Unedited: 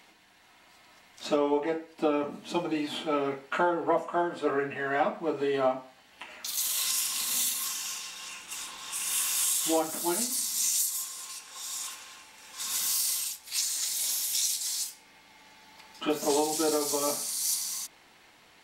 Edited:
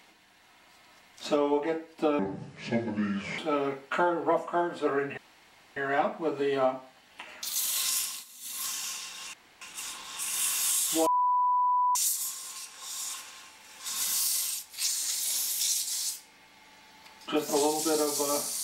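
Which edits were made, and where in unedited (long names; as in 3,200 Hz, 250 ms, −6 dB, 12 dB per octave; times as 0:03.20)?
0:02.19–0:02.99: play speed 67%
0:04.78: splice in room tone 0.59 s
0:07.00–0:07.69: duck −21 dB, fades 0.27 s
0:08.35: splice in room tone 0.28 s
0:09.80–0:10.69: beep over 992 Hz −22 dBFS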